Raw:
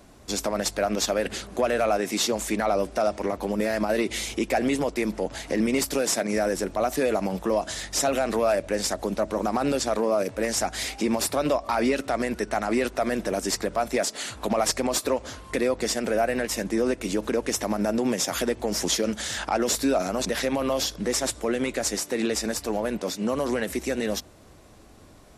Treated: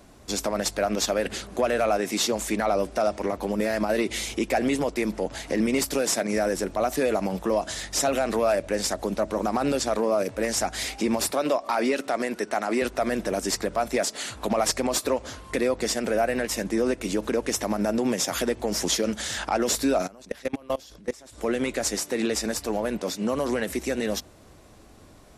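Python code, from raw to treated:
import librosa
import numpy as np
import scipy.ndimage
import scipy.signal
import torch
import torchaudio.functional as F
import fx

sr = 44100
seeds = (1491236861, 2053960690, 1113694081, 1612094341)

y = fx.highpass(x, sr, hz=220.0, slope=12, at=(11.31, 12.82))
y = fx.level_steps(y, sr, step_db=24, at=(20.06, 21.37), fade=0.02)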